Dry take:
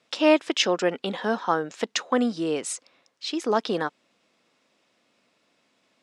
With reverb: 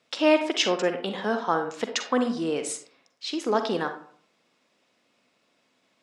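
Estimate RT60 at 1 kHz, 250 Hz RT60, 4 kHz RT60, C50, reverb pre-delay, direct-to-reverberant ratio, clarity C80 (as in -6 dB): 0.50 s, 0.55 s, 0.30 s, 8.5 dB, 40 ms, 6.5 dB, 13.5 dB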